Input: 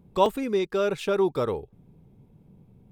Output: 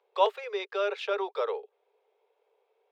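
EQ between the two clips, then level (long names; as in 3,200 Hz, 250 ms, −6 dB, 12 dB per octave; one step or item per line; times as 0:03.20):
Butterworth high-pass 410 Hz 96 dB per octave
high-frequency loss of the air 260 metres
high-shelf EQ 2,100 Hz +10.5 dB
−2.5 dB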